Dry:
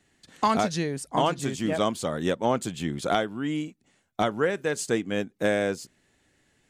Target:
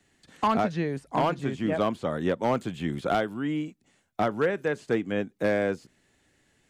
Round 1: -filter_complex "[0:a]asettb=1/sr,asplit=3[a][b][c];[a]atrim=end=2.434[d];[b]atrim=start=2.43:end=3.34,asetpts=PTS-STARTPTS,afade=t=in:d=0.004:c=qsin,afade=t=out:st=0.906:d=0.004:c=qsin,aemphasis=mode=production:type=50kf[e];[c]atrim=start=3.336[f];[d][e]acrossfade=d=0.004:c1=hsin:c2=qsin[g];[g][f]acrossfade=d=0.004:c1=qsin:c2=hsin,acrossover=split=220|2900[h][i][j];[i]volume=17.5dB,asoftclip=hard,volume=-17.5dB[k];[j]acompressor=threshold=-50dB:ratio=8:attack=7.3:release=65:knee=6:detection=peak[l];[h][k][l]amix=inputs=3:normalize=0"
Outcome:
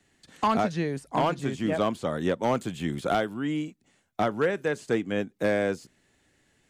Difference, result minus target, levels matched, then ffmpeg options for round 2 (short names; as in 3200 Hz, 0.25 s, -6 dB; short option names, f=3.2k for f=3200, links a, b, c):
compressor: peak gain reduction -8 dB
-filter_complex "[0:a]asettb=1/sr,asplit=3[a][b][c];[a]atrim=end=2.434[d];[b]atrim=start=2.43:end=3.34,asetpts=PTS-STARTPTS,afade=t=in:d=0.004:c=qsin,afade=t=out:st=0.906:d=0.004:c=qsin,aemphasis=mode=production:type=50kf[e];[c]atrim=start=3.336[f];[d][e]acrossfade=d=0.004:c1=hsin:c2=qsin[g];[g][f]acrossfade=d=0.004:c1=qsin:c2=hsin,acrossover=split=220|2900[h][i][j];[i]volume=17.5dB,asoftclip=hard,volume=-17.5dB[k];[j]acompressor=threshold=-59dB:ratio=8:attack=7.3:release=65:knee=6:detection=peak[l];[h][k][l]amix=inputs=3:normalize=0"